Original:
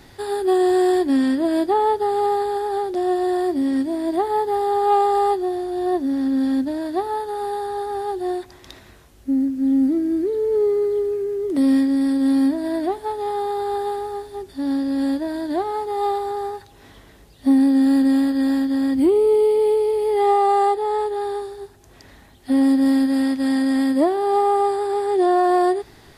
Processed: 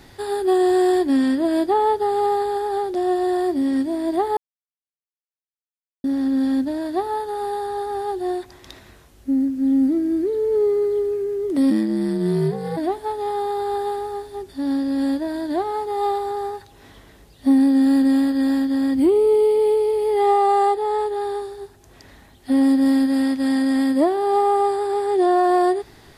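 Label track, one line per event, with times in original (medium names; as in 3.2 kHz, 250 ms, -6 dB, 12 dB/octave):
4.370000	6.040000	mute
11.700000	12.760000	ring modulator 48 Hz -> 160 Hz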